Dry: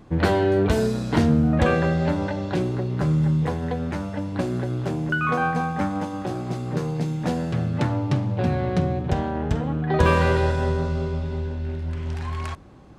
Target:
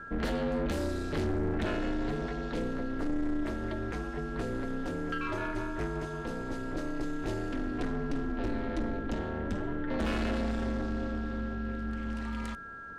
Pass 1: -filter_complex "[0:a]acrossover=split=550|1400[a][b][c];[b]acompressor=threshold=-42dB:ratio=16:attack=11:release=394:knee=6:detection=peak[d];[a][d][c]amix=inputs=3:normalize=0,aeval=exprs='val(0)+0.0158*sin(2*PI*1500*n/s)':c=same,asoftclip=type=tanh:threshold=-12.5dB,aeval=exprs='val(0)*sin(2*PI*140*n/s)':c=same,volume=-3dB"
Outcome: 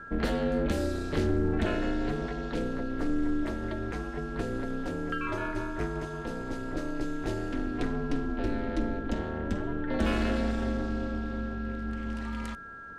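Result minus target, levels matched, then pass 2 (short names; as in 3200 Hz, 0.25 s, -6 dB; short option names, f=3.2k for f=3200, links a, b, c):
soft clip: distortion -9 dB
-filter_complex "[0:a]acrossover=split=550|1400[a][b][c];[b]acompressor=threshold=-42dB:ratio=16:attack=11:release=394:knee=6:detection=peak[d];[a][d][c]amix=inputs=3:normalize=0,aeval=exprs='val(0)+0.0158*sin(2*PI*1500*n/s)':c=same,asoftclip=type=tanh:threshold=-20.5dB,aeval=exprs='val(0)*sin(2*PI*140*n/s)':c=same,volume=-3dB"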